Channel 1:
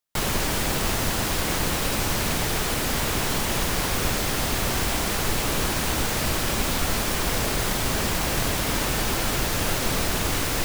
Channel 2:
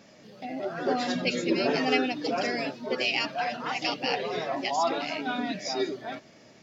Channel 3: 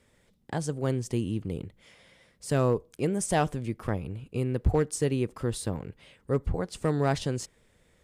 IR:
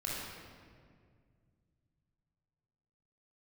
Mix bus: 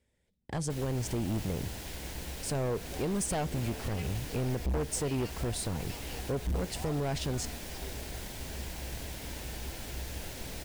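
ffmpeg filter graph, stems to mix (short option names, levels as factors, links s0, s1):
-filter_complex "[0:a]adelay=550,volume=0.141[s0];[1:a]adelay=2050,volume=0.1[s1];[2:a]agate=range=0.178:threshold=0.00178:ratio=16:detection=peak,volume=1.33[s2];[s0][s2]amix=inputs=2:normalize=0,equalizer=f=1200:t=o:w=0.42:g=-10.5,alimiter=limit=0.112:level=0:latency=1:release=180,volume=1[s3];[s1][s3]amix=inputs=2:normalize=0,equalizer=f=65:w=4.5:g=13.5,asoftclip=type=hard:threshold=0.0422"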